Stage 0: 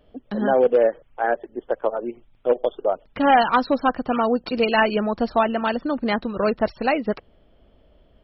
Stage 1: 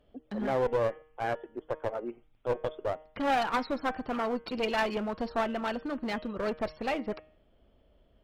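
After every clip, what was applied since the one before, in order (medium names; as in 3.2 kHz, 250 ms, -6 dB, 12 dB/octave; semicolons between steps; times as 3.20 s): one-sided clip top -22.5 dBFS; de-hum 155.6 Hz, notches 22; trim -8 dB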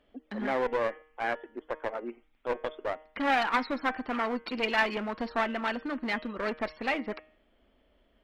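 ten-band graphic EQ 125 Hz -11 dB, 250 Hz +7 dB, 1 kHz +4 dB, 2 kHz +10 dB, 4 kHz +4 dB; trim -4 dB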